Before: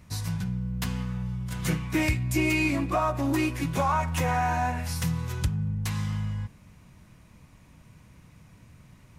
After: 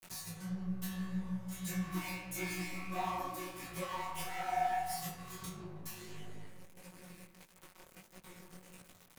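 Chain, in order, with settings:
in parallel at −9 dB: sine wavefolder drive 11 dB, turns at −13.5 dBFS
on the sum: downward compressor 1.5 to 1, threshold −37 dBFS, peak gain reduction 6.5 dB
stiff-string resonator 180 Hz, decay 0.78 s, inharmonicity 0.002
dead-zone distortion −58 dBFS
upward compression, threshold −45 dBFS
high-shelf EQ 10,000 Hz +12 dB
mains-hum notches 50/100/150/200 Hz
delay with a low-pass on its return 161 ms, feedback 36%, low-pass 2,100 Hz, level −6.5 dB
micro pitch shift up and down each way 55 cents
level +8 dB

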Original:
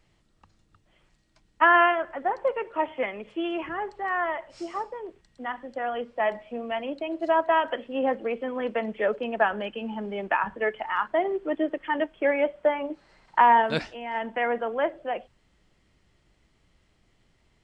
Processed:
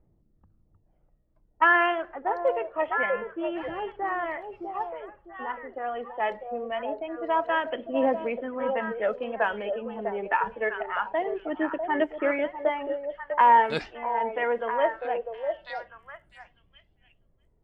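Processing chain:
phase shifter 0.25 Hz, delay 2.7 ms, feedback 42%
low-pass that shuts in the quiet parts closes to 580 Hz, open at −18 dBFS
echo through a band-pass that steps 649 ms, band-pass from 560 Hz, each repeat 1.4 octaves, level −4 dB
level −2.5 dB

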